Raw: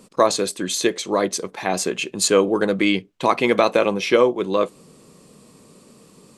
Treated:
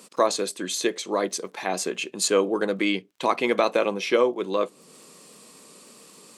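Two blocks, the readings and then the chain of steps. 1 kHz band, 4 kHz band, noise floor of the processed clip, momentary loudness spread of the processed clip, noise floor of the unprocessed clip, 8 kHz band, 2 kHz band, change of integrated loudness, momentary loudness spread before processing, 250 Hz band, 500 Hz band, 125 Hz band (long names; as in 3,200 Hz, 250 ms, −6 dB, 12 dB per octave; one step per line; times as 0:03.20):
−4.5 dB, −4.5 dB, −55 dBFS, 7 LU, −51 dBFS, −4.5 dB, −4.5 dB, −5.0 dB, 7 LU, −6.0 dB, −4.5 dB, −9.0 dB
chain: high-pass filter 210 Hz 12 dB per octave
surface crackle 29 per second −47 dBFS
one half of a high-frequency compander encoder only
level −4.5 dB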